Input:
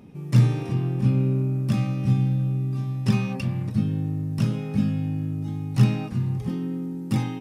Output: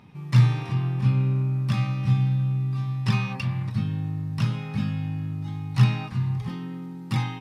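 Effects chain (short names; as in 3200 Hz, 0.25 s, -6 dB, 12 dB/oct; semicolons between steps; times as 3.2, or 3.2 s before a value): ten-band EQ 125 Hz +7 dB, 250 Hz -3 dB, 500 Hz -4 dB, 1000 Hz +11 dB, 2000 Hz +7 dB, 4000 Hz +9 dB; gain -6 dB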